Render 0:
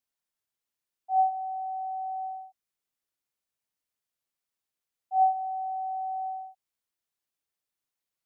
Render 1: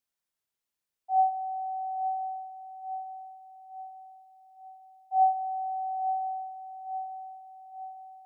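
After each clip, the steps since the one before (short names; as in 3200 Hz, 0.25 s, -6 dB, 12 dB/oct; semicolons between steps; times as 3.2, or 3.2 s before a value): dark delay 0.868 s, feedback 49%, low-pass 660 Hz, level -6 dB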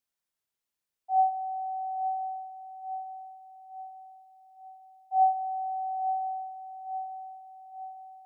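nothing audible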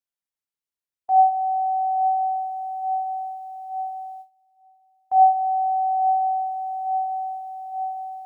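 gate with hold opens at -42 dBFS; in parallel at +3 dB: compressor, threshold -39 dBFS, peak gain reduction 18.5 dB; on the sum: gain +6.5 dB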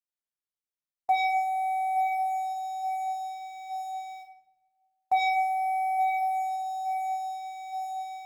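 sample leveller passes 2; shoebox room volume 340 m³, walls mixed, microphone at 0.92 m; gain -5.5 dB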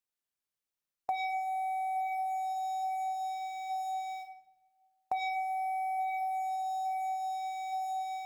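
compressor 4:1, threshold -35 dBFS, peak gain reduction 12.5 dB; gain +2 dB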